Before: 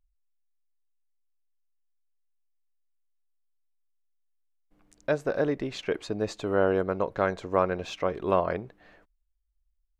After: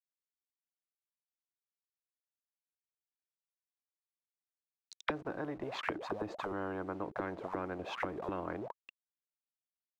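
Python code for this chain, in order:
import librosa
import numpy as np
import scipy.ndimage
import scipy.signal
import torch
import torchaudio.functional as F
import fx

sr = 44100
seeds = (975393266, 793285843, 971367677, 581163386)

y = fx.delta_hold(x, sr, step_db=-44.0)
y = fx.auto_wah(y, sr, base_hz=310.0, top_hz=4300.0, q=15.0, full_db=-25.5, direction='down')
y = fx.spectral_comp(y, sr, ratio=4.0)
y = y * 10.0 ** (9.5 / 20.0)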